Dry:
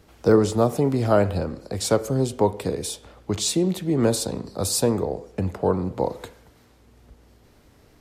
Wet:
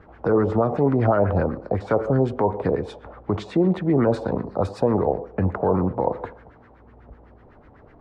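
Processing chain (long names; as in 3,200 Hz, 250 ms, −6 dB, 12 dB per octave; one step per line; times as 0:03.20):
brickwall limiter −16 dBFS, peak gain reduction 10.5 dB
auto-filter low-pass sine 8 Hz 710–1,800 Hz
level +4 dB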